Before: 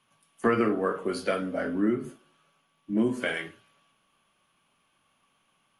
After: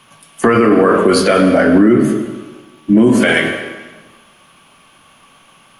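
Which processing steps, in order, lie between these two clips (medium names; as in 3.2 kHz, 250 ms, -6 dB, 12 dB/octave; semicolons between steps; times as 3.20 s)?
reverberation RT60 1.2 s, pre-delay 92 ms, DRR 11.5 dB; loudness maximiser +23.5 dB; trim -1 dB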